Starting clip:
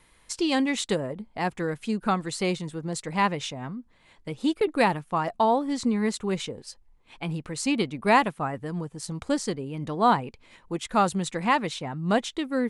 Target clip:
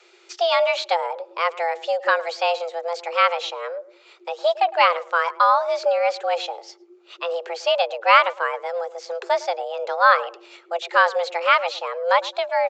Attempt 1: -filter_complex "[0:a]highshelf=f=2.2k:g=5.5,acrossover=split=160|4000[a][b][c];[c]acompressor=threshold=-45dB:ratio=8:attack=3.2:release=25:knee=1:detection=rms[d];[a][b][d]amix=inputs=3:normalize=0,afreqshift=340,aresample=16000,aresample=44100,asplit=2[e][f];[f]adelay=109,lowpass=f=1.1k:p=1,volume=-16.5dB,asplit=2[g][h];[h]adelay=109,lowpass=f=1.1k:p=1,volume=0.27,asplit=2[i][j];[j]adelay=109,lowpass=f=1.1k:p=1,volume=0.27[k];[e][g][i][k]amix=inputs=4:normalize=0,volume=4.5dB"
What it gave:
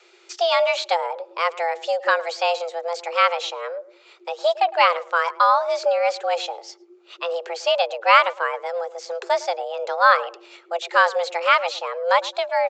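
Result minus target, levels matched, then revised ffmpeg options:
compressor: peak gain reduction -8 dB
-filter_complex "[0:a]highshelf=f=2.2k:g=5.5,acrossover=split=160|4000[a][b][c];[c]acompressor=threshold=-54dB:ratio=8:attack=3.2:release=25:knee=1:detection=rms[d];[a][b][d]amix=inputs=3:normalize=0,afreqshift=340,aresample=16000,aresample=44100,asplit=2[e][f];[f]adelay=109,lowpass=f=1.1k:p=1,volume=-16.5dB,asplit=2[g][h];[h]adelay=109,lowpass=f=1.1k:p=1,volume=0.27,asplit=2[i][j];[j]adelay=109,lowpass=f=1.1k:p=1,volume=0.27[k];[e][g][i][k]amix=inputs=4:normalize=0,volume=4.5dB"

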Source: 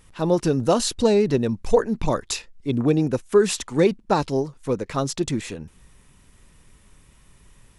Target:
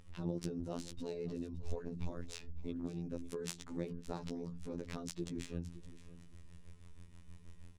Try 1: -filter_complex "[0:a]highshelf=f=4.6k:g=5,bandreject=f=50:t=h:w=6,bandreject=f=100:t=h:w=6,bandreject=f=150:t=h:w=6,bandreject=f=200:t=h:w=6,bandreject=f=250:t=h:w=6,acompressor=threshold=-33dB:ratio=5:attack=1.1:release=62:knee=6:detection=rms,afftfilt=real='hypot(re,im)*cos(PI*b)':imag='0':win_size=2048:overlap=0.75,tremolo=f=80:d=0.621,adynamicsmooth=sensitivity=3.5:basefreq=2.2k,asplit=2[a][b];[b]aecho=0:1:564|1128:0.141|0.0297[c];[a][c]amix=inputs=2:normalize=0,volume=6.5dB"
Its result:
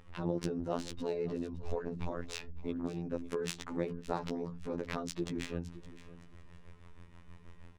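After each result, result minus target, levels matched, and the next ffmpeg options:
1000 Hz band +5.0 dB; 8000 Hz band -3.0 dB
-filter_complex "[0:a]highshelf=f=4.6k:g=5,bandreject=f=50:t=h:w=6,bandreject=f=100:t=h:w=6,bandreject=f=150:t=h:w=6,bandreject=f=200:t=h:w=6,bandreject=f=250:t=h:w=6,acompressor=threshold=-33dB:ratio=5:attack=1.1:release=62:knee=6:detection=rms,equalizer=f=1.1k:w=0.33:g=-10.5,afftfilt=real='hypot(re,im)*cos(PI*b)':imag='0':win_size=2048:overlap=0.75,tremolo=f=80:d=0.621,adynamicsmooth=sensitivity=3.5:basefreq=2.2k,asplit=2[a][b];[b]aecho=0:1:564|1128:0.141|0.0297[c];[a][c]amix=inputs=2:normalize=0,volume=6.5dB"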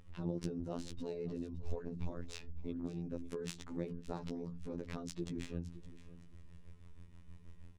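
8000 Hz band -4.0 dB
-filter_complex "[0:a]highshelf=f=4.6k:g=14.5,bandreject=f=50:t=h:w=6,bandreject=f=100:t=h:w=6,bandreject=f=150:t=h:w=6,bandreject=f=200:t=h:w=6,bandreject=f=250:t=h:w=6,acompressor=threshold=-33dB:ratio=5:attack=1.1:release=62:knee=6:detection=rms,equalizer=f=1.1k:w=0.33:g=-10.5,afftfilt=real='hypot(re,im)*cos(PI*b)':imag='0':win_size=2048:overlap=0.75,tremolo=f=80:d=0.621,adynamicsmooth=sensitivity=3.5:basefreq=2.2k,asplit=2[a][b];[b]aecho=0:1:564|1128:0.141|0.0297[c];[a][c]amix=inputs=2:normalize=0,volume=6.5dB"

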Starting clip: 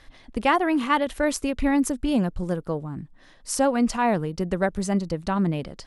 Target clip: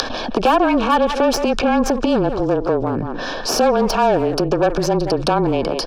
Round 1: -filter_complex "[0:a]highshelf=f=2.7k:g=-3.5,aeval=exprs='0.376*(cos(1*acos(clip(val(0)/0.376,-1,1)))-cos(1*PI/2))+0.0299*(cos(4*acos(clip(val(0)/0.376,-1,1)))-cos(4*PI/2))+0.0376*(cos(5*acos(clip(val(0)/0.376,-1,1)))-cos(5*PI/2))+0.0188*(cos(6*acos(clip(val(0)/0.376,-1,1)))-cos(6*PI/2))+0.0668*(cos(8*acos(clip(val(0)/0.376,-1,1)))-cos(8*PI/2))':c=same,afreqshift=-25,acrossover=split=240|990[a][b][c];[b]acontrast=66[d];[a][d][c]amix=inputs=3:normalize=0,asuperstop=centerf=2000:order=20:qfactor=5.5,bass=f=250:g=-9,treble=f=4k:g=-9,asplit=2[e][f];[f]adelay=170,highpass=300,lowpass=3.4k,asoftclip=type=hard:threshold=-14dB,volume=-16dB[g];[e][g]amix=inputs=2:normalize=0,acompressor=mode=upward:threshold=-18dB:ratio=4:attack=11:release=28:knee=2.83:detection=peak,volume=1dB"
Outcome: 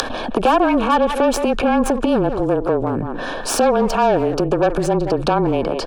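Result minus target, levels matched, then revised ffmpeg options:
4000 Hz band -3.5 dB
-filter_complex "[0:a]lowpass=f=5.4k:t=q:w=3.8,highshelf=f=2.7k:g=-3.5,aeval=exprs='0.376*(cos(1*acos(clip(val(0)/0.376,-1,1)))-cos(1*PI/2))+0.0299*(cos(4*acos(clip(val(0)/0.376,-1,1)))-cos(4*PI/2))+0.0376*(cos(5*acos(clip(val(0)/0.376,-1,1)))-cos(5*PI/2))+0.0188*(cos(6*acos(clip(val(0)/0.376,-1,1)))-cos(6*PI/2))+0.0668*(cos(8*acos(clip(val(0)/0.376,-1,1)))-cos(8*PI/2))':c=same,afreqshift=-25,acrossover=split=240|990[a][b][c];[b]acontrast=66[d];[a][d][c]amix=inputs=3:normalize=0,asuperstop=centerf=2000:order=20:qfactor=5.5,bass=f=250:g=-9,treble=f=4k:g=-9,asplit=2[e][f];[f]adelay=170,highpass=300,lowpass=3.4k,asoftclip=type=hard:threshold=-14dB,volume=-16dB[g];[e][g]amix=inputs=2:normalize=0,acompressor=mode=upward:threshold=-18dB:ratio=4:attack=11:release=28:knee=2.83:detection=peak,volume=1dB"

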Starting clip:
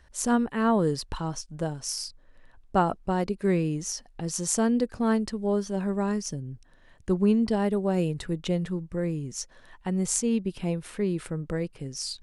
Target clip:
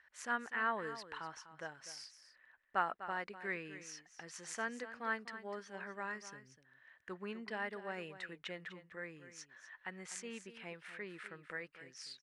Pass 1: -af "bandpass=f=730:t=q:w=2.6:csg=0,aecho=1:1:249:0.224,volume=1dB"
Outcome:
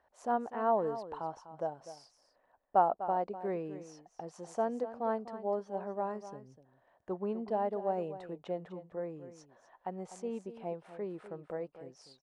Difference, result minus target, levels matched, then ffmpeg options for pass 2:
2000 Hz band -19.0 dB
-af "bandpass=f=1.8k:t=q:w=2.6:csg=0,aecho=1:1:249:0.224,volume=1dB"

